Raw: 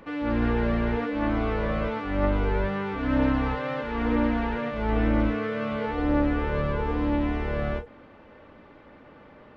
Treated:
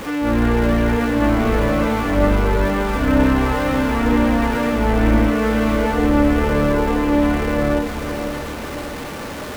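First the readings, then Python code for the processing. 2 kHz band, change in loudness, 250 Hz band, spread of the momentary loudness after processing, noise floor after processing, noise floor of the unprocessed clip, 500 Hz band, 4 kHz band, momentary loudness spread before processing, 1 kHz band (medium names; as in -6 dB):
+9.5 dB, +8.5 dB, +9.0 dB, 10 LU, -29 dBFS, -51 dBFS, +9.0 dB, +12.0 dB, 5 LU, +9.0 dB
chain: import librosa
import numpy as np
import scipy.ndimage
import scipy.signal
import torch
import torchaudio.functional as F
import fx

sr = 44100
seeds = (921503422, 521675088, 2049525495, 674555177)

y = x + 0.5 * 10.0 ** (-33.0 / 20.0) * np.sign(x)
y = fx.echo_diffused(y, sr, ms=613, feedback_pct=44, wet_db=-7.0)
y = F.gain(torch.from_numpy(y), 6.5).numpy()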